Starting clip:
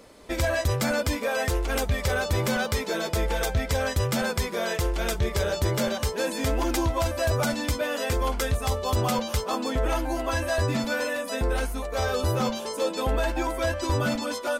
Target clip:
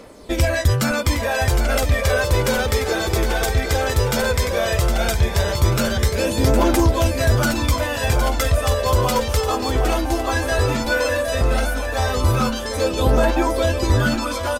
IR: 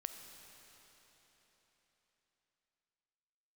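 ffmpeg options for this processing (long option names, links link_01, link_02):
-af "aecho=1:1:762|1524|2286|3048|3810:0.422|0.177|0.0744|0.0312|0.0131,aphaser=in_gain=1:out_gain=1:delay=2.8:decay=0.4:speed=0.15:type=triangular,volume=5dB"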